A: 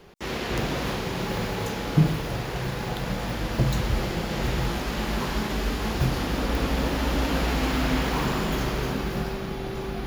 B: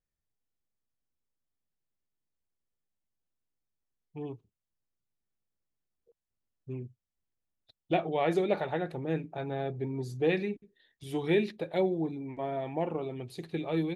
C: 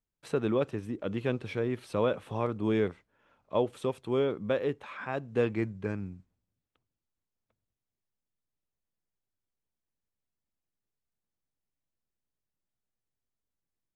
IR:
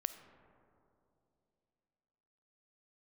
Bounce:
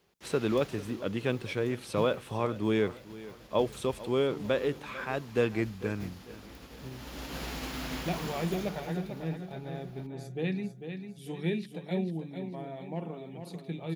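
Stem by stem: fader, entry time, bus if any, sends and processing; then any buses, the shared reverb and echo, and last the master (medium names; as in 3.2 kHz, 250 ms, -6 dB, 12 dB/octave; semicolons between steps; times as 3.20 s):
8.41 s -8.5 dB -> 9.15 s -17.5 dB, 0.00 s, no send, no echo send, upward expansion 1.5:1, over -37 dBFS; auto duck -11 dB, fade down 1.20 s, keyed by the third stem
-9.0 dB, 0.15 s, no send, echo send -8 dB, peaking EQ 180 Hz +14.5 dB 0.51 oct
0.0 dB, 0.00 s, no send, echo send -17.5 dB, none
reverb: none
echo: feedback delay 447 ms, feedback 40%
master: high-pass 51 Hz; treble shelf 3 kHz +8.5 dB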